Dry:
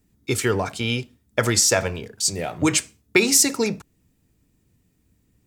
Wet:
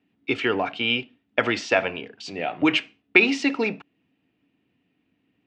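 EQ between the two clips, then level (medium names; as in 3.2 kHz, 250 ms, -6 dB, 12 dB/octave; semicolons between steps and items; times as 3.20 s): cabinet simulation 200–2900 Hz, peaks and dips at 280 Hz +7 dB, 730 Hz +6 dB, 2.8 kHz +7 dB; treble shelf 2.2 kHz +10.5 dB; -3.5 dB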